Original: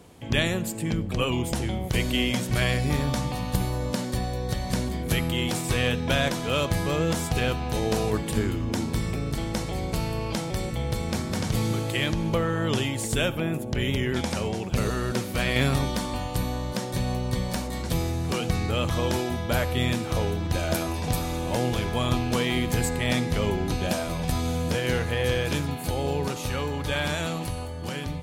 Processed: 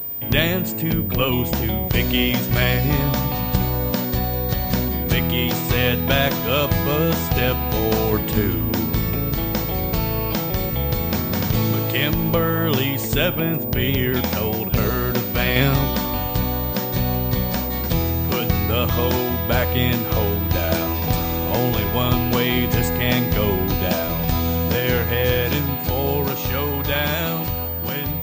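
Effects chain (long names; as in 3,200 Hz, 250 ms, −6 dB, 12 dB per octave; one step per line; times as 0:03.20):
switching amplifier with a slow clock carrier 15,000 Hz
level +5.5 dB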